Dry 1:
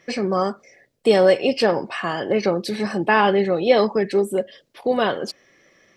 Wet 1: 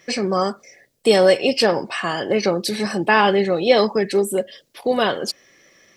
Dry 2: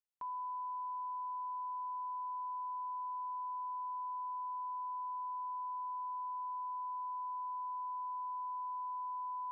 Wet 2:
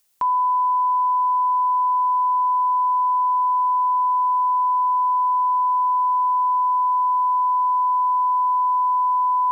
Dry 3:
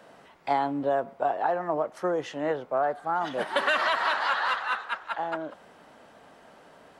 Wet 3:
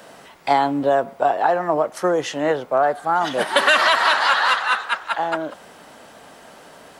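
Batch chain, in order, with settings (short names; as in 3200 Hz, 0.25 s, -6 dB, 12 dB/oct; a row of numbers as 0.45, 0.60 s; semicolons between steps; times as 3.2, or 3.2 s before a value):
high shelf 4200 Hz +11 dB; match loudness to -19 LUFS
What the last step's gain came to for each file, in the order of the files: +0.5, +21.0, +8.0 dB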